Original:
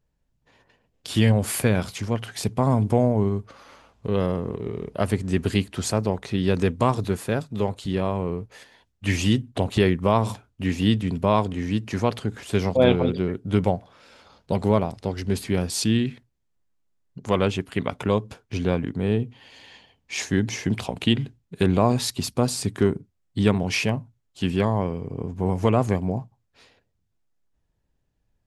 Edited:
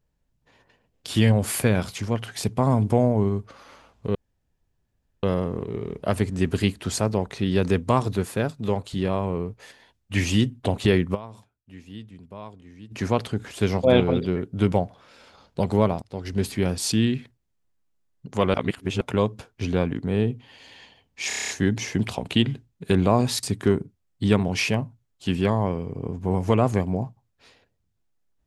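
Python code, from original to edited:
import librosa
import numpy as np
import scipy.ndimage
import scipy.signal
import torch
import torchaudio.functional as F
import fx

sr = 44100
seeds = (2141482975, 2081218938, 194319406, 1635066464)

y = fx.edit(x, sr, fx.insert_room_tone(at_s=4.15, length_s=1.08),
    fx.fade_down_up(start_s=10.06, length_s=1.78, db=-19.5, fade_s=0.12, curve='exp'),
    fx.fade_in_from(start_s=14.94, length_s=0.33, floor_db=-16.5),
    fx.reverse_span(start_s=17.46, length_s=0.47),
    fx.stutter(start_s=20.2, slice_s=0.03, count=8),
    fx.cut(start_s=22.14, length_s=0.44), tone=tone)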